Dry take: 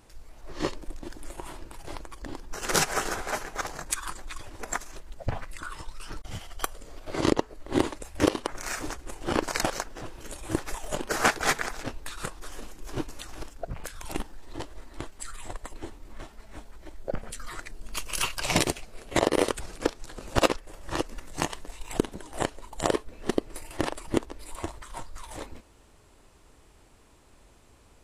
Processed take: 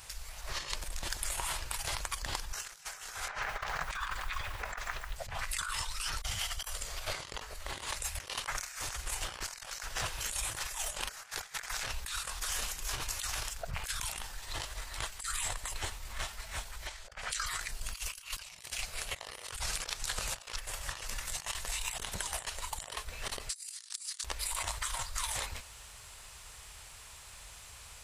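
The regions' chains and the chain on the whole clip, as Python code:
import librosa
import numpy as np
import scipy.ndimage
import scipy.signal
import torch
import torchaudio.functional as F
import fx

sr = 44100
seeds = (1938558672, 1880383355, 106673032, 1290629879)

y = fx.chain(x, sr, fx.lowpass(hz=2400.0, slope=12),
    fx.echo_crushed(ms=142, feedback_pct=35, bits=9, wet_db=-12), at=(3.28, 5.16))
y = fx.chain(y, sr, fx.lowpass(hz=7300.0, slope=12),
    fx.low_shelf(hz=430.0, db=-12.0),
    fx.over_compress(threshold_db=-44.0, ratio=-0.5), at=(16.87, 17.46))
y = fx.chain(y, sr, fx.highpass(hz=1300.0, slope=24),
    fx.band_shelf(hz=6300.0, db=15.5, octaves=1.7), at=(23.49, 24.24))
y = fx.highpass(y, sr, hz=72.0, slope=6)
y = fx.tone_stack(y, sr, knobs='10-0-10')
y = fx.over_compress(y, sr, threshold_db=-49.0, ratio=-1.0)
y = y * 10.0 ** (8.5 / 20.0)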